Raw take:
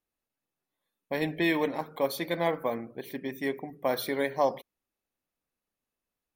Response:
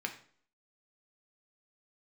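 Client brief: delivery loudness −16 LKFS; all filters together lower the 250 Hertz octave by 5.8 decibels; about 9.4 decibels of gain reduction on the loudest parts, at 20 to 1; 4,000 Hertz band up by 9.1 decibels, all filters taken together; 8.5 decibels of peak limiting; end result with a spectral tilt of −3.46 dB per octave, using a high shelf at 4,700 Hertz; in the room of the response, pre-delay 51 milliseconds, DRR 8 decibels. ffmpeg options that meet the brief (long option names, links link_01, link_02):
-filter_complex "[0:a]equalizer=frequency=250:width_type=o:gain=-8.5,equalizer=frequency=4000:width_type=o:gain=8.5,highshelf=frequency=4700:gain=4.5,acompressor=threshold=-30dB:ratio=20,alimiter=level_in=3dB:limit=-24dB:level=0:latency=1,volume=-3dB,asplit=2[link_01][link_02];[1:a]atrim=start_sample=2205,adelay=51[link_03];[link_02][link_03]afir=irnorm=-1:irlink=0,volume=-10.5dB[link_04];[link_01][link_04]amix=inputs=2:normalize=0,volume=22.5dB"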